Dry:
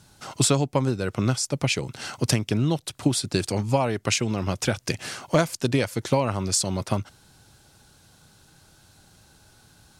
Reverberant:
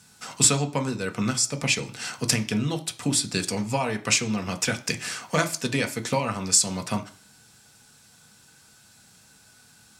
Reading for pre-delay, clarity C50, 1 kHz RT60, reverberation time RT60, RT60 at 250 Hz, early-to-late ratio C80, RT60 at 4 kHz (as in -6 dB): 3 ms, 16.0 dB, 0.45 s, 0.45 s, 0.40 s, 21.0 dB, 0.45 s